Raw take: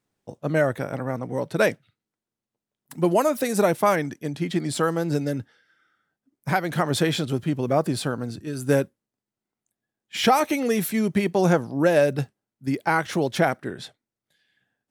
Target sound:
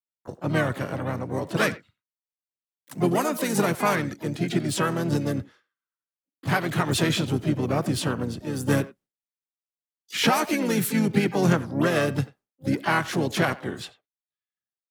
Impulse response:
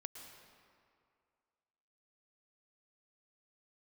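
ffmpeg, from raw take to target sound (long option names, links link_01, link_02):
-filter_complex "[0:a]agate=range=-33dB:threshold=-46dB:ratio=3:detection=peak,acrossover=split=350|930[link_01][link_02][link_03];[link_02]acompressor=threshold=-33dB:ratio=20[link_04];[link_01][link_04][link_03]amix=inputs=3:normalize=0,asplit=2[link_05][link_06];[link_06]adelay=90,highpass=300,lowpass=3400,asoftclip=type=hard:threshold=-19.5dB,volume=-17dB[link_07];[link_05][link_07]amix=inputs=2:normalize=0,asplit=4[link_08][link_09][link_10][link_11];[link_09]asetrate=33038,aresample=44100,atempo=1.33484,volume=-7dB[link_12];[link_10]asetrate=52444,aresample=44100,atempo=0.840896,volume=-10dB[link_13];[link_11]asetrate=88200,aresample=44100,atempo=0.5,volume=-13dB[link_14];[link_08][link_12][link_13][link_14]amix=inputs=4:normalize=0"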